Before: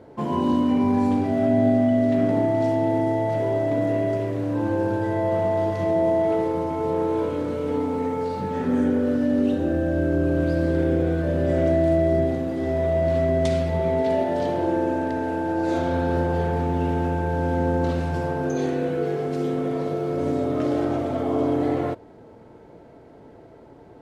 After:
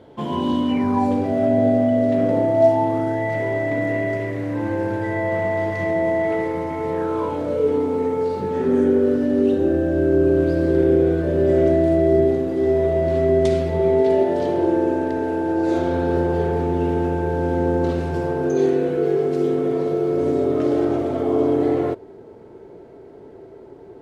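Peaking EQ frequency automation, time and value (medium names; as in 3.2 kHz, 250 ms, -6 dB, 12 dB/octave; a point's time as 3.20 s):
peaking EQ +13 dB 0.33 oct
0.68 s 3.3 kHz
1.12 s 530 Hz
2.53 s 530 Hz
3.25 s 2 kHz
6.93 s 2 kHz
7.70 s 390 Hz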